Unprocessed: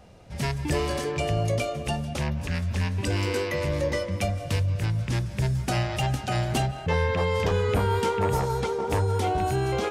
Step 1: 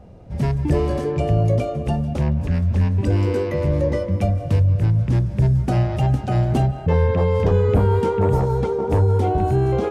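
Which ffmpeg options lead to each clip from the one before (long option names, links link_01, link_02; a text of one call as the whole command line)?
ffmpeg -i in.wav -af "tiltshelf=frequency=1100:gain=9" out.wav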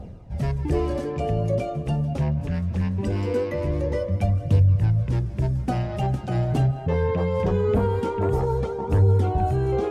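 ffmpeg -i in.wav -af "areverse,acompressor=mode=upward:threshold=-25dB:ratio=2.5,areverse,flanger=delay=0.2:depth=7.4:regen=38:speed=0.22:shape=triangular" out.wav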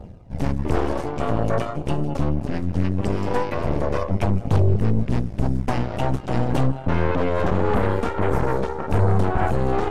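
ffmpeg -i in.wav -af "aeval=exprs='0.398*(cos(1*acos(clip(val(0)/0.398,-1,1)))-cos(1*PI/2))+0.112*(cos(8*acos(clip(val(0)/0.398,-1,1)))-cos(8*PI/2))':channel_layout=same,volume=-2dB" out.wav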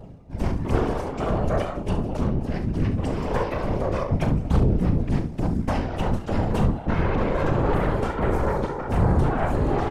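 ffmpeg -i in.wav -af "afftfilt=real='hypot(re,im)*cos(2*PI*random(0))':imag='hypot(re,im)*sin(2*PI*random(1))':win_size=512:overlap=0.75,aecho=1:1:38|69:0.299|0.266,volume=3.5dB" out.wav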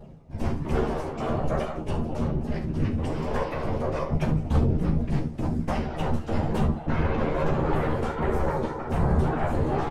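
ffmpeg -i in.wav -filter_complex "[0:a]flanger=delay=4.8:depth=4.3:regen=-44:speed=1.2:shape=sinusoidal,asplit=2[link_01][link_02];[link_02]adelay=13,volume=-4dB[link_03];[link_01][link_03]amix=inputs=2:normalize=0" out.wav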